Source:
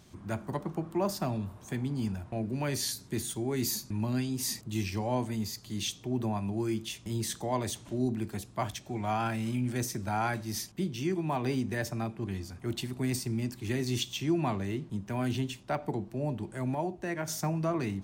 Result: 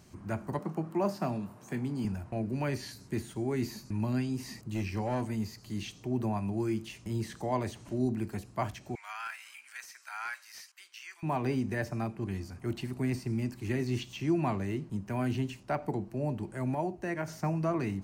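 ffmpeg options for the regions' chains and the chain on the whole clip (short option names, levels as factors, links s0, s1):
-filter_complex "[0:a]asettb=1/sr,asplit=3[s0][s1][s2];[s0]atrim=end=0.594[s3];[s1]atrim=start=0.59:end=2.05,asetpts=PTS-STARTPTS,afade=t=in:d=0.004:c=qsin,afade=t=out:st=1.456:d=0.004:c=qsin,highpass=f=130:w=0.5412,highpass=f=130:w=1.3066,asplit=2[s4][s5];[s5]adelay=25,volume=0.224[s6];[s4][s6]amix=inputs=2:normalize=0,atrim=end_sample=64386[s7];[s2]atrim=start=2.046[s8];[s3][s7]acrossfade=d=0.004:c1=hsin:c2=qsin[s9];[s9][s8]acrossfade=d=0.004:c1=qsin:c2=hsin,asettb=1/sr,asplit=3[s10][s11][s12];[s10]atrim=end=4.634[s13];[s11]atrim=start=4.63:end=5.31,asetpts=PTS-STARTPTS,afade=t=in:d=0.004:c=qsin,afade=t=out:st=0.676:d=0.004:c=qsin,bandreject=f=660:w=17,asoftclip=type=hard:threshold=0.0473[s14];[s12]atrim=start=5.306[s15];[s13][s14]acrossfade=d=0.004:c1=hsin:c2=qsin[s16];[s16][s15]acrossfade=d=0.004:c1=qsin:c2=hsin,asettb=1/sr,asplit=3[s17][s18][s19];[s17]atrim=end=8.954[s20];[s18]atrim=start=8.95:end=11.23,asetpts=PTS-STARTPTS,afade=t=in:d=0.004:c=qsin,afade=t=out:st=2.276:d=0.004:c=qsin,highpass=f=1300:w=0.5412,highpass=f=1300:w=1.3066,asoftclip=type=hard:threshold=0.0316[s21];[s19]atrim=start=11.226[s22];[s20][s21]acrossfade=d=0.004:c1=hsin:c2=qsin[s23];[s23][s22]acrossfade=d=0.004:c1=qsin:c2=hsin,equalizer=f=3500:w=6.8:g=-11,acrossover=split=3500[s24][s25];[s25]acompressor=threshold=0.00251:ratio=4:attack=1:release=60[s26];[s24][s26]amix=inputs=2:normalize=0"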